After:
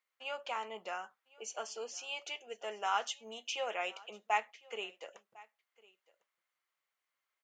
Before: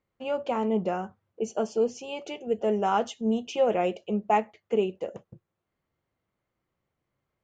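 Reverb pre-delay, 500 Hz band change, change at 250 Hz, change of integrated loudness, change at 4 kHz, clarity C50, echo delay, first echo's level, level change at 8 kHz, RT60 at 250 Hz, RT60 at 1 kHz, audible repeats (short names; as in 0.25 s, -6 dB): none, -16.5 dB, -29.5 dB, -11.0 dB, +1.0 dB, none, 1.053 s, -23.5 dB, n/a, none, none, 1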